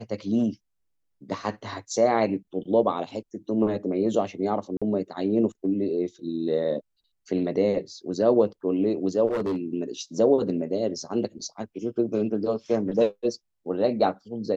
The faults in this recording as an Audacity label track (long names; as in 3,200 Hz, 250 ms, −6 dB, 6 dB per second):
4.770000	4.820000	drop-out 46 ms
9.280000	9.570000	clipping −22.5 dBFS